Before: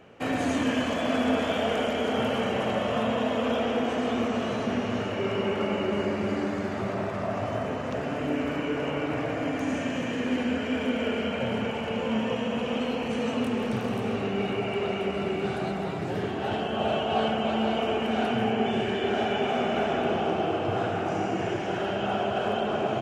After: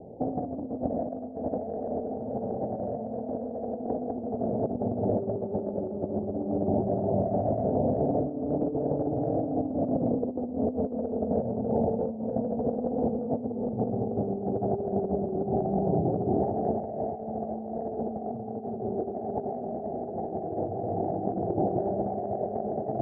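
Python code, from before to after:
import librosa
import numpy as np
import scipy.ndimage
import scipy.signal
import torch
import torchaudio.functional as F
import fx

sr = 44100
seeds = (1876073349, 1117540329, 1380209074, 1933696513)

y = scipy.signal.sosfilt(scipy.signal.butter(12, 800.0, 'lowpass', fs=sr, output='sos'), x)
y = fx.over_compress(y, sr, threshold_db=-32.0, ratio=-0.5)
y = F.gain(torch.from_numpy(y), 3.5).numpy()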